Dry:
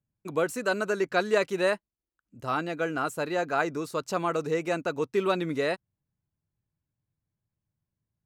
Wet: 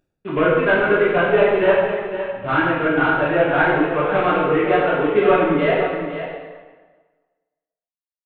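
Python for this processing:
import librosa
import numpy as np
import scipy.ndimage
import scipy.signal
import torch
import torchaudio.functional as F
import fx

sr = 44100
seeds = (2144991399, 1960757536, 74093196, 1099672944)

p1 = fx.cvsd(x, sr, bps=16000)
p2 = fx.dereverb_blind(p1, sr, rt60_s=2.0)
p3 = fx.rider(p2, sr, range_db=10, speed_s=0.5)
p4 = p2 + F.gain(torch.from_numpy(p3), -2.0).numpy()
p5 = fx.wow_flutter(p4, sr, seeds[0], rate_hz=2.1, depth_cents=84.0)
p6 = p5 + fx.echo_single(p5, sr, ms=512, db=-10.0, dry=0)
y = fx.rev_plate(p6, sr, seeds[1], rt60_s=1.4, hf_ratio=0.8, predelay_ms=0, drr_db=-7.5)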